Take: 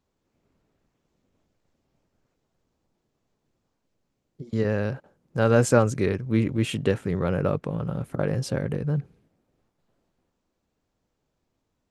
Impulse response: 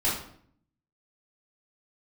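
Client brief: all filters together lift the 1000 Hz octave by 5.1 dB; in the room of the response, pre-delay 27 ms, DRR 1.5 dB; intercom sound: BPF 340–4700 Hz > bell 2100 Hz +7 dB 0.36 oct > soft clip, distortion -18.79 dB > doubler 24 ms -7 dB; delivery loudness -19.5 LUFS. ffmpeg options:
-filter_complex "[0:a]equalizer=f=1k:t=o:g=7,asplit=2[a][b];[1:a]atrim=start_sample=2205,adelay=27[c];[b][c]afir=irnorm=-1:irlink=0,volume=-12dB[d];[a][d]amix=inputs=2:normalize=0,highpass=340,lowpass=4.7k,equalizer=f=2.1k:t=o:w=0.36:g=7,asoftclip=threshold=-8.5dB,asplit=2[e][f];[f]adelay=24,volume=-7dB[g];[e][g]amix=inputs=2:normalize=0,volume=5dB"

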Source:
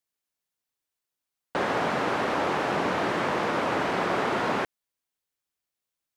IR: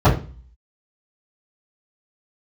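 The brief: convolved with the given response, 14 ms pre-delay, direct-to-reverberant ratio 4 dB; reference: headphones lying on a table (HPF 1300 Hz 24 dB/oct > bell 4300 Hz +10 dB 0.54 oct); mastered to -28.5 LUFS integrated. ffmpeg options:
-filter_complex "[0:a]asplit=2[a][b];[1:a]atrim=start_sample=2205,adelay=14[c];[b][c]afir=irnorm=-1:irlink=0,volume=-27.5dB[d];[a][d]amix=inputs=2:normalize=0,highpass=f=1.3k:w=0.5412,highpass=f=1.3k:w=1.3066,equalizer=f=4.3k:t=o:w=0.54:g=10,volume=1.5dB"

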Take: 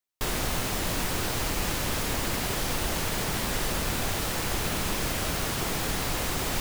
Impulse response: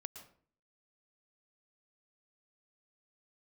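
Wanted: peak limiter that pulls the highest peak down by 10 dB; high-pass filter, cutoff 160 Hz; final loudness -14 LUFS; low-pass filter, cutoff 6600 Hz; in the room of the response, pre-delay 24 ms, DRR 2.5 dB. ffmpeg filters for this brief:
-filter_complex "[0:a]highpass=160,lowpass=6.6k,alimiter=level_in=4.5dB:limit=-24dB:level=0:latency=1,volume=-4.5dB,asplit=2[a][b];[1:a]atrim=start_sample=2205,adelay=24[c];[b][c]afir=irnorm=-1:irlink=0,volume=1.5dB[d];[a][d]amix=inputs=2:normalize=0,volume=20.5dB"

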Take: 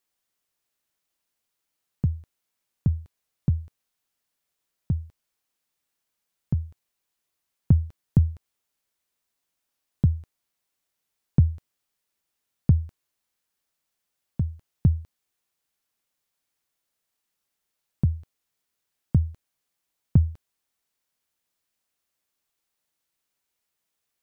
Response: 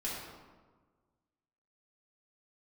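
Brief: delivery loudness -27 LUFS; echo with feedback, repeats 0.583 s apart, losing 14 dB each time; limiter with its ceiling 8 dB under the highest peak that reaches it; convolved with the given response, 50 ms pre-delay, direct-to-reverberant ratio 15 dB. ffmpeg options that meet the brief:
-filter_complex "[0:a]alimiter=limit=-15.5dB:level=0:latency=1,aecho=1:1:583|1166:0.2|0.0399,asplit=2[a][b];[1:a]atrim=start_sample=2205,adelay=50[c];[b][c]afir=irnorm=-1:irlink=0,volume=-18dB[d];[a][d]amix=inputs=2:normalize=0,volume=5dB"

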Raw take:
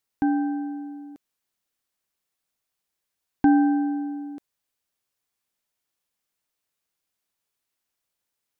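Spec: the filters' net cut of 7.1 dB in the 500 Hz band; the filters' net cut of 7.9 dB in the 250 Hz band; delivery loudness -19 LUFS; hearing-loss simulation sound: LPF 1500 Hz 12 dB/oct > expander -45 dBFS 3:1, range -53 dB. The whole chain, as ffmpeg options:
-af "lowpass=1.5k,equalizer=f=250:t=o:g=-8,equalizer=f=500:t=o:g=-4,agate=range=-53dB:threshold=-45dB:ratio=3,volume=11.5dB"

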